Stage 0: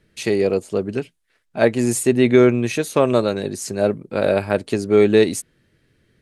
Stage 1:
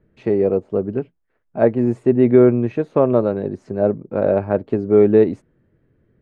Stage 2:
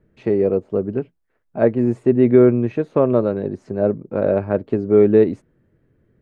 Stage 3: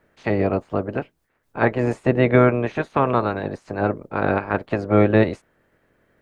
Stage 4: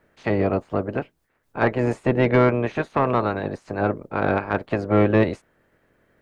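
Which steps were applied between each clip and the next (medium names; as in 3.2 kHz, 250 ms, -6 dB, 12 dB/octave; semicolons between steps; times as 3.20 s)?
low-pass 1 kHz 12 dB/octave; trim +1.5 dB
dynamic bell 790 Hz, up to -4 dB, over -31 dBFS, Q 2.5
spectral peaks clipped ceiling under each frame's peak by 22 dB; trim -2.5 dB
saturation -8 dBFS, distortion -17 dB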